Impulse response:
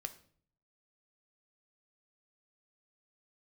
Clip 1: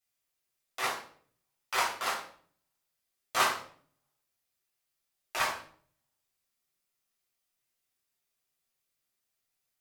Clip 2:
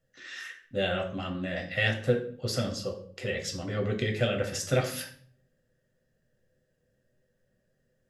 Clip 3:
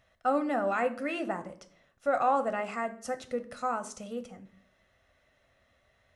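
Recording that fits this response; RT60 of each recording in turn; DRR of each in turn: 3; 0.50, 0.50, 0.50 s; -7.0, 1.5, 8.0 dB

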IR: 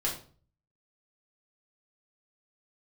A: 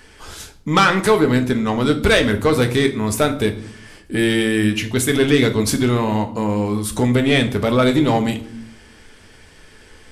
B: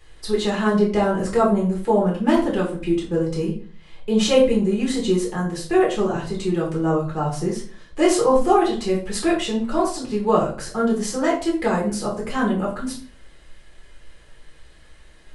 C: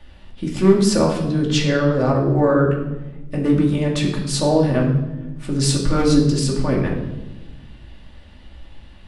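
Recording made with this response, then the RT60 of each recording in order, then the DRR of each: B; 0.65, 0.45, 1.1 s; 6.0, -4.5, -2.5 dB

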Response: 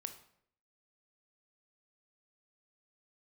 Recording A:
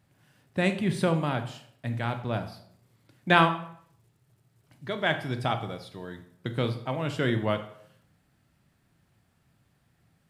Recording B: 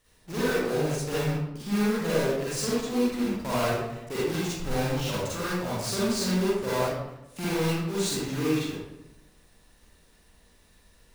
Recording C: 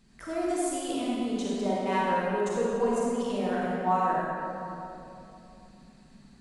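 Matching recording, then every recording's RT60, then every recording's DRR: A; 0.65, 0.90, 2.9 s; 7.5, -9.5, -6.0 dB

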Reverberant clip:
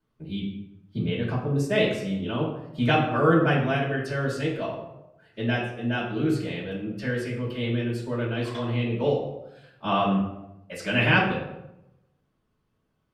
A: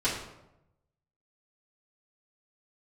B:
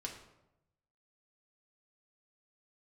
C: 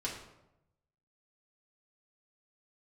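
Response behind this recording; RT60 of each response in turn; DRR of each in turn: A; 0.90, 0.90, 0.90 s; -11.0, -1.0, -5.5 dB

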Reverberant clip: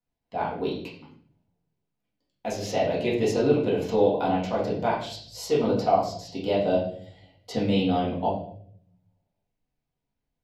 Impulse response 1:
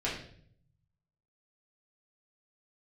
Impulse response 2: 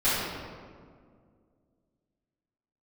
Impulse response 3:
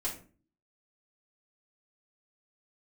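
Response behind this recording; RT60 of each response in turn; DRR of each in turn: 1; 0.60, 2.0, 0.40 s; -7.5, -15.0, -7.5 dB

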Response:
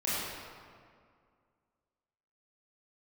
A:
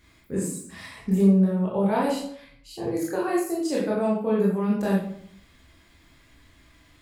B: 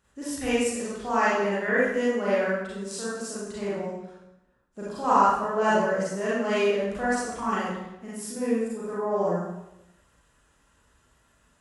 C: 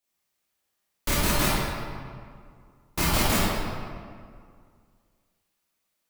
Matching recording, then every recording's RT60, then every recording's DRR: C; 0.60, 0.90, 2.1 s; -5.5, -9.5, -10.0 dB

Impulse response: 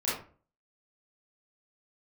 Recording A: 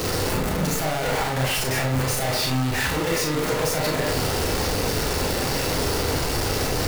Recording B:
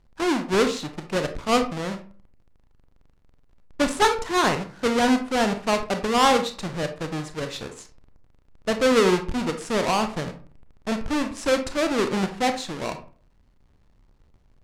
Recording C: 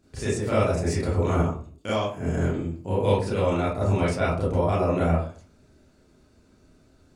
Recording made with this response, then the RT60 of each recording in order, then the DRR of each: C; 0.40, 0.40, 0.40 s; -2.0, 7.0, -9.5 dB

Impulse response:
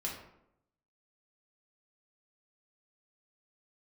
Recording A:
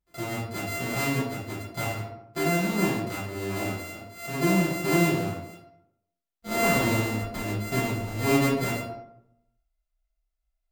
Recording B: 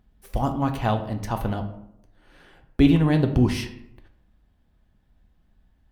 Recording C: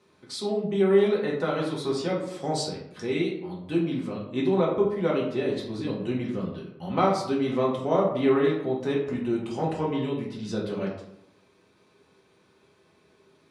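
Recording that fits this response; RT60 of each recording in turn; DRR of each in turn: C; 0.80, 0.80, 0.80 s; -9.0, 5.5, -3.5 dB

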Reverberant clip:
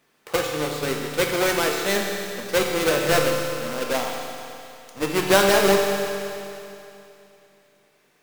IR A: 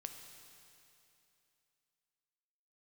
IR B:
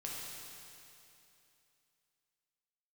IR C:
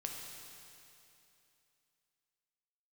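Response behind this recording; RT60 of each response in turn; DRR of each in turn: C; 2.8, 2.8, 2.8 s; 5.0, -4.5, 0.5 dB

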